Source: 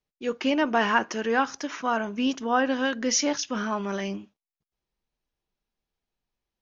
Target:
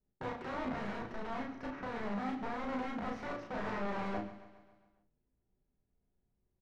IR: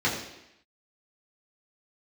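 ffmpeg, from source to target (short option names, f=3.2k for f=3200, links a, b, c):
-filter_complex "[0:a]lowpass=f=1.8k:p=1,equalizer=f=1k:w=0.69:g=-11,bandreject=f=490:w=12,acompressor=threshold=-41dB:ratio=8,aeval=exprs='(mod(112*val(0)+1,2)-1)/112':c=same,adynamicsmooth=sensitivity=4:basefreq=1.4k,asplit=2[a][b];[b]adelay=35,volume=-2.5dB[c];[a][c]amix=inputs=2:normalize=0,aecho=1:1:136|272|408|544|680|816:0.178|0.103|0.0598|0.0347|0.0201|0.0117,asplit=2[d][e];[1:a]atrim=start_sample=2205,afade=t=out:st=0.16:d=0.01,atrim=end_sample=7497[f];[e][f]afir=irnorm=-1:irlink=0,volume=-16dB[g];[d][g]amix=inputs=2:normalize=0,volume=6dB"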